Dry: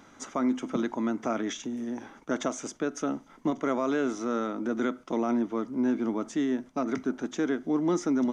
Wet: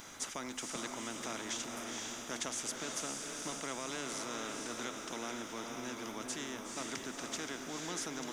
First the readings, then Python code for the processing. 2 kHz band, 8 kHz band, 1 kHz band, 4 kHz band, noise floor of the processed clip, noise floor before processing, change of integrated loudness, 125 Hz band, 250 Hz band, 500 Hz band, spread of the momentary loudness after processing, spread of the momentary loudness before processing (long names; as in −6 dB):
−3.0 dB, +4.5 dB, −8.0 dB, +3.5 dB, −46 dBFS, −55 dBFS, −10.0 dB, −10.5 dB, −17.0 dB, −13.5 dB, 3 LU, 6 LU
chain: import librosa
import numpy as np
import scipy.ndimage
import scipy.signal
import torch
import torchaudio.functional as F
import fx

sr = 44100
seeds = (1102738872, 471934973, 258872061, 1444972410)

y = librosa.effects.preemphasis(x, coef=0.8, zi=[0.0])
y = fx.echo_diffused(y, sr, ms=484, feedback_pct=42, wet_db=-5.5)
y = fx.spectral_comp(y, sr, ratio=2.0)
y = y * 10.0 ** (4.5 / 20.0)